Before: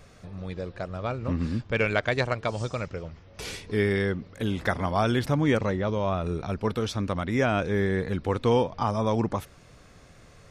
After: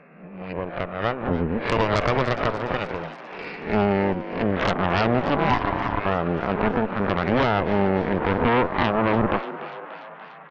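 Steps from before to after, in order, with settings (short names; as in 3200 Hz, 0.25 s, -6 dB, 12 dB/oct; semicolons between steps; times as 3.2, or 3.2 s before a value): spectral swells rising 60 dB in 0.56 s; treble ducked by the level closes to 1100 Hz, closed at -21.5 dBFS; FFT band-pass 140–2800 Hz; 5.36–6.06 ring modulator 500 Hz; added harmonics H 3 -15 dB, 5 -15 dB, 6 -7 dB, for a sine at -11 dBFS; frequency-shifting echo 0.292 s, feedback 63%, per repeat +140 Hz, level -14 dB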